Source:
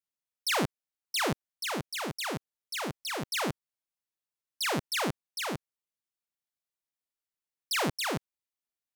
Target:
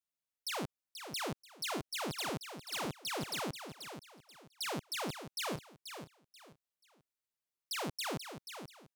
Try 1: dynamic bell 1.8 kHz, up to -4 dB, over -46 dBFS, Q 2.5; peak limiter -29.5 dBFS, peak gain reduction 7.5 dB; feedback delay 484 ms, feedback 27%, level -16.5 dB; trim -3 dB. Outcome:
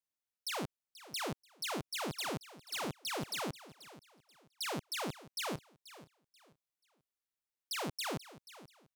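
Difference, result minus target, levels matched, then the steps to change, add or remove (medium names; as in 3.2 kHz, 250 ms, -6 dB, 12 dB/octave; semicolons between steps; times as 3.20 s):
echo-to-direct -7.5 dB
change: feedback delay 484 ms, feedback 27%, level -9 dB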